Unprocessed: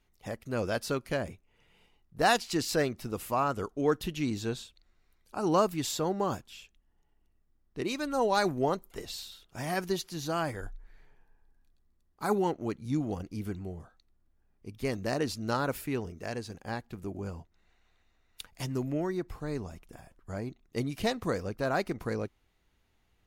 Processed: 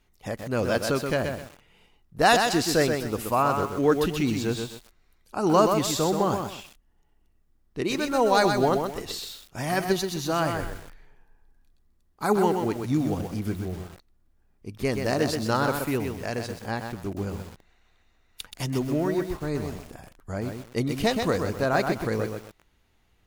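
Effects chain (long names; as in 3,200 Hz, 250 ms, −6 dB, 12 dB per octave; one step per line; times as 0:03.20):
feedback echo at a low word length 127 ms, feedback 35%, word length 8 bits, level −5 dB
level +5.5 dB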